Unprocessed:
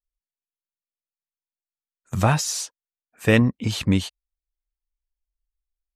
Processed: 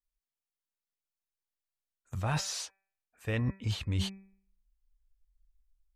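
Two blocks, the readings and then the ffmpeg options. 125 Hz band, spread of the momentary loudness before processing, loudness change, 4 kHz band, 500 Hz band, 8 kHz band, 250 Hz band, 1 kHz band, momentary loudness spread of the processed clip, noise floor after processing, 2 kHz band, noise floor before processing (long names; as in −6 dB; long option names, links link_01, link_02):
−9.5 dB, 14 LU, −12.5 dB, −8.5 dB, −16.0 dB, −11.0 dB, −16.0 dB, −13.0 dB, 11 LU, below −85 dBFS, −14.0 dB, below −85 dBFS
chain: -filter_complex "[0:a]acrossover=split=4400[link_01][link_02];[link_02]acompressor=threshold=-40dB:ratio=4:attack=1:release=60[link_03];[link_01][link_03]amix=inputs=2:normalize=0,asubboost=boost=8:cutoff=73,bandreject=frequency=193.9:width_type=h:width=4,bandreject=frequency=387.8:width_type=h:width=4,bandreject=frequency=581.7:width_type=h:width=4,bandreject=frequency=775.6:width_type=h:width=4,bandreject=frequency=969.5:width_type=h:width=4,bandreject=frequency=1163.4:width_type=h:width=4,bandreject=frequency=1357.3:width_type=h:width=4,bandreject=frequency=1551.2:width_type=h:width=4,bandreject=frequency=1745.1:width_type=h:width=4,bandreject=frequency=1939:width_type=h:width=4,bandreject=frequency=2132.9:width_type=h:width=4,bandreject=frequency=2326.8:width_type=h:width=4,bandreject=frequency=2520.7:width_type=h:width=4,areverse,acompressor=threshold=-26dB:ratio=12,areverse,volume=-2dB"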